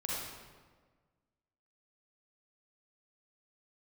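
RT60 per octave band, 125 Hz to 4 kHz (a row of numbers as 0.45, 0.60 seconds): 1.8, 1.7, 1.6, 1.4, 1.2, 1.0 seconds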